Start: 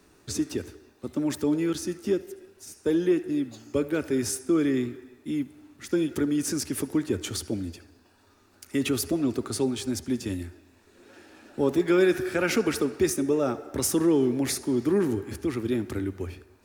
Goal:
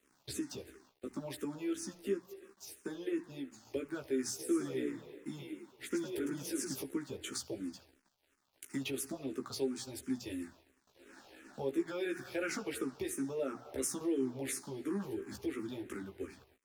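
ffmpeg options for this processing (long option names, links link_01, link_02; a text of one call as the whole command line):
ffmpeg -i in.wav -filter_complex "[0:a]highpass=frequency=180:poles=1,bandreject=frequency=60:width_type=h:width=6,bandreject=frequency=120:width_type=h:width=6,bandreject=frequency=180:width_type=h:width=6,bandreject=frequency=240:width_type=h:width=6,bandreject=frequency=300:width_type=h:width=6,acompressor=threshold=-40dB:ratio=2,aeval=exprs='sgn(val(0))*max(abs(val(0))-0.00126,0)':channel_layout=same,asplit=2[link_01][link_02];[link_02]adelay=15,volume=-4dB[link_03];[link_01][link_03]amix=inputs=2:normalize=0,asplit=3[link_04][link_05][link_06];[link_04]afade=type=out:start_time=4.38:duration=0.02[link_07];[link_05]asplit=6[link_08][link_09][link_10][link_11][link_12][link_13];[link_09]adelay=107,afreqshift=34,volume=-5dB[link_14];[link_10]adelay=214,afreqshift=68,volume=-12.1dB[link_15];[link_11]adelay=321,afreqshift=102,volume=-19.3dB[link_16];[link_12]adelay=428,afreqshift=136,volume=-26.4dB[link_17];[link_13]adelay=535,afreqshift=170,volume=-33.5dB[link_18];[link_08][link_14][link_15][link_16][link_17][link_18]amix=inputs=6:normalize=0,afade=type=in:start_time=4.38:duration=0.02,afade=type=out:start_time=6.82:duration=0.02[link_19];[link_06]afade=type=in:start_time=6.82:duration=0.02[link_20];[link_07][link_19][link_20]amix=inputs=3:normalize=0,asplit=2[link_21][link_22];[link_22]afreqshift=-2.9[link_23];[link_21][link_23]amix=inputs=2:normalize=1" out.wav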